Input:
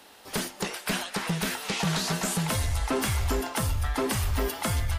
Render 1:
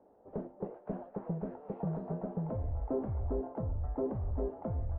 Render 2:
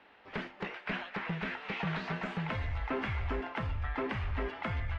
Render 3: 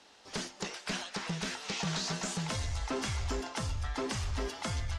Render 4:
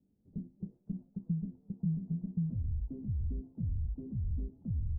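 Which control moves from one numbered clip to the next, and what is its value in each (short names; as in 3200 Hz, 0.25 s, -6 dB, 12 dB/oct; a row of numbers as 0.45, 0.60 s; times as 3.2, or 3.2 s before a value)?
ladder low-pass, frequency: 730, 2800, 7600, 230 Hz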